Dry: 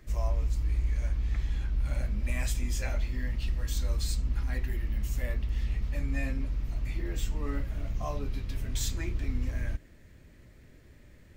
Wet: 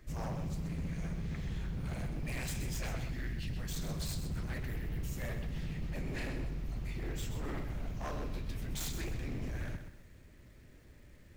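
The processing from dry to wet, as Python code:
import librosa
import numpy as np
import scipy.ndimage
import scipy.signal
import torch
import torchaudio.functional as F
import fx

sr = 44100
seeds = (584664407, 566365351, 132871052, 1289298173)

y = fx.spec_erase(x, sr, start_s=3.12, length_s=0.45, low_hz=270.0, high_hz=1400.0)
y = 10.0 ** (-29.5 / 20.0) * (np.abs((y / 10.0 ** (-29.5 / 20.0) + 3.0) % 4.0 - 2.0) - 1.0)
y = fx.echo_crushed(y, sr, ms=128, feedback_pct=35, bits=10, wet_db=-8.5)
y = F.gain(torch.from_numpy(y), -3.0).numpy()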